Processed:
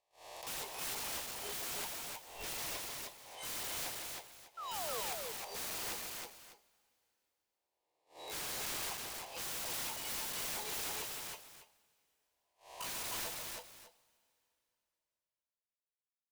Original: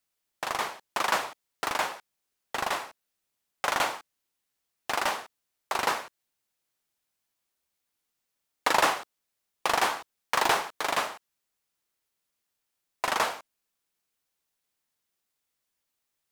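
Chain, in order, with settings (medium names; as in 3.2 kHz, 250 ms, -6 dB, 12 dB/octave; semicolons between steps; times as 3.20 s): reverse spectral sustain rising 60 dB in 1.91 s; spectral noise reduction 20 dB; gate -53 dBFS, range -26 dB; 5.84–8.79 s: peaking EQ 260 Hz +11.5 dB 1.9 oct; compression 20:1, threshold -31 dBFS, peak gain reduction 20.5 dB; static phaser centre 580 Hz, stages 4; integer overflow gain 40 dB; 4.57–5.01 s: painted sound fall 420–1400 Hz -47 dBFS; multi-tap echo 144/316/598 ms -9/-3/-15 dB; two-slope reverb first 0.21 s, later 3.2 s, from -18 dB, DRR 16 dB; trim +3 dB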